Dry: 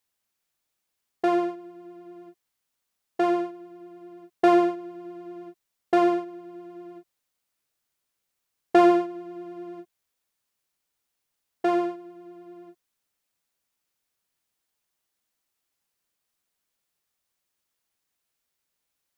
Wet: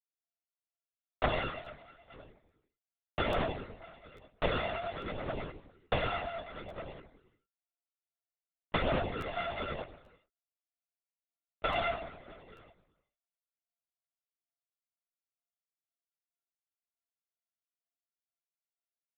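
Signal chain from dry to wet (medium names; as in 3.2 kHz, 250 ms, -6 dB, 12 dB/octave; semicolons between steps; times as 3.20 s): sorted samples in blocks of 64 samples; 1.43–2.13 s: high-pass 540 Hz 12 dB/octave; expander -35 dBFS; compression 12:1, threshold -32 dBFS, peak gain reduction 20 dB; flange 0.18 Hz, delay 4.9 ms, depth 8.7 ms, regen -2%; gated-style reverb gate 460 ms falling, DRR 9.5 dB; LPC vocoder at 8 kHz whisper; crackling interface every 0.84 s, samples 512, repeat, from 0.80 s; trim +7.5 dB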